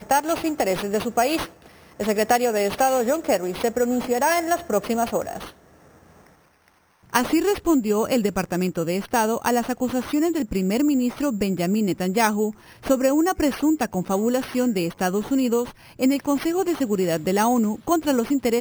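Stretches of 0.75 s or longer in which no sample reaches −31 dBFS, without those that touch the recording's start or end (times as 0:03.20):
0:05.48–0:07.13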